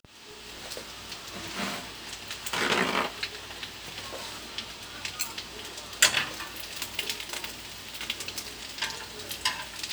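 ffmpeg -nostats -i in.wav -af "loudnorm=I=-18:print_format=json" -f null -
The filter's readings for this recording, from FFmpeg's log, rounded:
"input_i" : "-31.8",
"input_tp" : "-1.4",
"input_lra" : "4.2",
"input_thresh" : "-41.9",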